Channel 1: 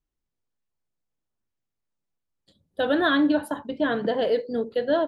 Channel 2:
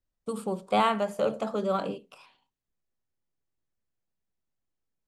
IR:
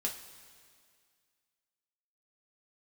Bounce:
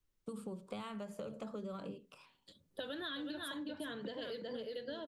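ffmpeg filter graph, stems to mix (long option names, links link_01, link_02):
-filter_complex "[0:a]lowshelf=frequency=200:gain=-10,volume=2dB,asplit=2[link_01][link_02];[link_02]volume=-5.5dB[link_03];[1:a]lowshelf=frequency=220:gain=9.5,volume=-7dB[link_04];[link_03]aecho=0:1:367:1[link_05];[link_01][link_04][link_05]amix=inputs=3:normalize=0,acrossover=split=170|3000[link_06][link_07][link_08];[link_07]acompressor=threshold=-32dB:ratio=6[link_09];[link_06][link_09][link_08]amix=inputs=3:normalize=0,equalizer=frequency=750:width_type=o:width=0.43:gain=-6.5,acompressor=threshold=-42dB:ratio=4"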